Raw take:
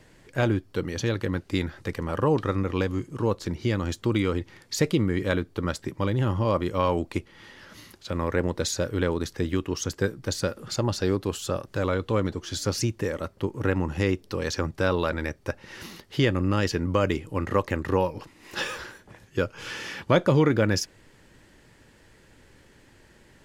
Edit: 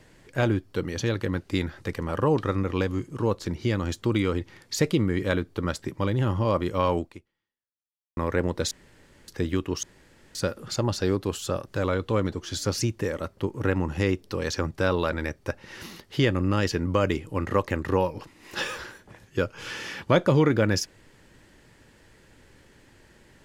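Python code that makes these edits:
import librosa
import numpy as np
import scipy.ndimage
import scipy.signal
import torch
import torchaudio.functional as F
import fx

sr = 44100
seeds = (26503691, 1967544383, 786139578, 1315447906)

y = fx.edit(x, sr, fx.fade_out_span(start_s=6.98, length_s=1.19, curve='exp'),
    fx.room_tone_fill(start_s=8.71, length_s=0.57),
    fx.room_tone_fill(start_s=9.83, length_s=0.52), tone=tone)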